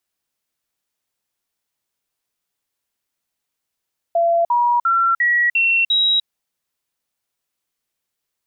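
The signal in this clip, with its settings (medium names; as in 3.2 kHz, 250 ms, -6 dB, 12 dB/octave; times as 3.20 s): stepped sine 679 Hz up, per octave 2, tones 6, 0.30 s, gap 0.05 s -13 dBFS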